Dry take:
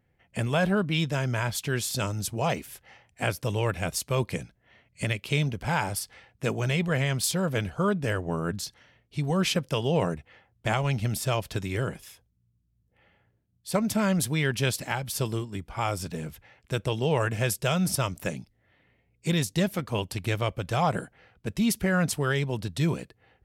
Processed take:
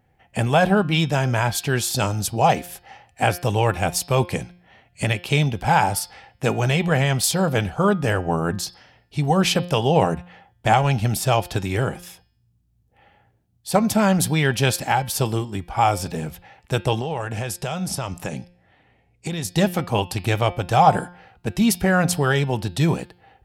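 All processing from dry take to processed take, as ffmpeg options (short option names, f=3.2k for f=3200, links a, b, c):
-filter_complex "[0:a]asettb=1/sr,asplit=3[a][b][c];[a]atrim=end=17.004[d];[b]atrim=start=17:end=19.45,asetpts=PTS-STARTPTS,afade=t=in:d=0.004:c=qsin,afade=t=out:st=2.446:d=0.004:c=qsin,lowpass=11k,acompressor=threshold=-29dB:ratio=12:attack=3.2:release=140:knee=1:detection=peak[e];[c]atrim=start=19.446[f];[d][e]acrossfade=d=0.004:c1=hsin:c2=qsin[g];[g][f]acrossfade=d=0.004:c1=qsin:c2=hsin,equalizer=f=790:w=5:g=10.5,bandreject=f=2.1k:w=25,bandreject=f=176.7:t=h:w=4,bandreject=f=353.4:t=h:w=4,bandreject=f=530.1:t=h:w=4,bandreject=f=706.8:t=h:w=4,bandreject=f=883.5:t=h:w=4,bandreject=f=1.0602k:t=h:w=4,bandreject=f=1.2369k:t=h:w=4,bandreject=f=1.4136k:t=h:w=4,bandreject=f=1.5903k:t=h:w=4,bandreject=f=1.767k:t=h:w=4,bandreject=f=1.9437k:t=h:w=4,bandreject=f=2.1204k:t=h:w=4,bandreject=f=2.2971k:t=h:w=4,bandreject=f=2.4738k:t=h:w=4,bandreject=f=2.6505k:t=h:w=4,bandreject=f=2.8272k:t=h:w=4,bandreject=f=3.0039k:t=h:w=4,bandreject=f=3.1806k:t=h:w=4,bandreject=f=3.3573k:t=h:w=4,bandreject=f=3.534k:t=h:w=4,bandreject=f=3.7107k:t=h:w=4,bandreject=f=3.8874k:t=h:w=4,bandreject=f=4.0641k:t=h:w=4,bandreject=f=4.2408k:t=h:w=4,bandreject=f=4.4175k:t=h:w=4,bandreject=f=4.5942k:t=h:w=4,bandreject=f=4.7709k:t=h:w=4,bandreject=f=4.9476k:t=h:w=4,bandreject=f=5.1243k:t=h:w=4,bandreject=f=5.301k:t=h:w=4,volume=6.5dB"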